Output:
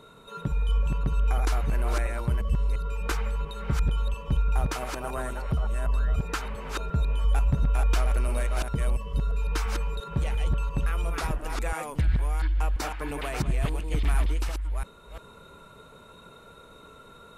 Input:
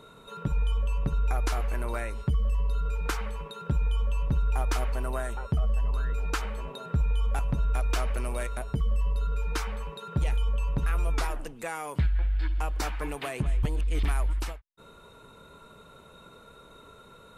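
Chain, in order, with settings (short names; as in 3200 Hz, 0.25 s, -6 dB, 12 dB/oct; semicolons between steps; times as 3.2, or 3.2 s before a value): reverse delay 0.345 s, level -3 dB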